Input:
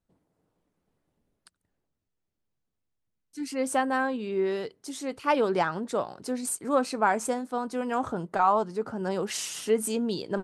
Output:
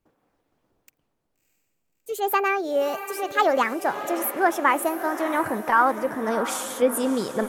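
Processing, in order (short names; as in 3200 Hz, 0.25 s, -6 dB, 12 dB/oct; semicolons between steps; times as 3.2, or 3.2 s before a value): speed glide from 170% -> 109%; dynamic EQ 4700 Hz, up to -6 dB, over -47 dBFS, Q 1.1; diffused feedback echo 0.643 s, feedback 51%, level -11 dB; gain +4.5 dB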